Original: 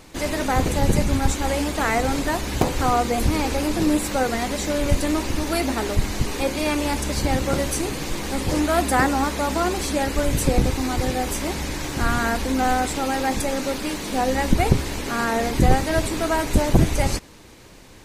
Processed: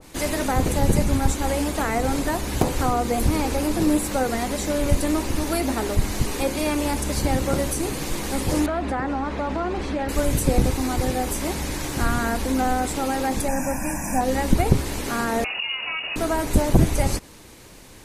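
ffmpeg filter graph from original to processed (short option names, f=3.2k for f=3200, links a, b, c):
-filter_complex "[0:a]asettb=1/sr,asplit=3[a][b][c];[a]atrim=end=8.664[d];[b]atrim=start=8.66:end=10.09,asetpts=PTS-STARTPTS,afade=t=in:d=0.004:c=qsin,afade=t=out:st=1.426:d=0.004:c=qsin,lowpass=2.8k,acompressor=threshold=-21dB:ratio=4:attack=3.2:release=140:knee=1:detection=peak[e];[c]atrim=start=10.086[f];[d][e]acrossfade=d=0.004:c1=hsin:c2=qsin[g];[g][f]acrossfade=d=0.004:c1=qsin:c2=hsin,asettb=1/sr,asplit=3[h][i][j];[h]atrim=end=13.484[k];[i]atrim=start=13.48:end=14.21,asetpts=PTS-STARTPTS,afade=t=in:d=0.004:c=qsin,afade=t=out:st=0.726:d=0.004:c=qsin,asuperstop=centerf=3700:order=8:qfactor=1.3,aecho=1:1:1.2:0.94,atrim=end_sample=32193[l];[j]atrim=start=14.206[m];[k][l]acrossfade=d=0.004:c1=hsin:c2=qsin[n];[n][m]acrossfade=d=0.004:c1=qsin:c2=hsin,asettb=1/sr,asplit=3[o][p][q];[o]atrim=end=15.444[r];[p]atrim=start=15.44:end=16.16,asetpts=PTS-STARTPTS,afade=t=in:d=0.004:c=qsin,afade=t=out:st=0.716:d=0.004:c=qsin,acompressor=threshold=-20dB:ratio=3:attack=3.2:release=140:knee=1:detection=peak,lowpass=f=2.5k:t=q:w=0.5098,lowpass=f=2.5k:t=q:w=0.6013,lowpass=f=2.5k:t=q:w=0.9,lowpass=f=2.5k:t=q:w=2.563,afreqshift=-2900[s];[q]atrim=start=16.156[t];[r][s]acrossfade=d=0.004:c1=hsin:c2=qsin[u];[u][t]acrossfade=d=0.004:c1=qsin:c2=hsin,equalizer=f=11k:t=o:w=0.96:g=7,acrossover=split=490[v][w];[w]acompressor=threshold=-21dB:ratio=6[x];[v][x]amix=inputs=2:normalize=0,adynamicequalizer=threshold=0.02:dfrequency=1500:dqfactor=0.7:tfrequency=1500:tqfactor=0.7:attack=5:release=100:ratio=0.375:range=2:mode=cutabove:tftype=highshelf"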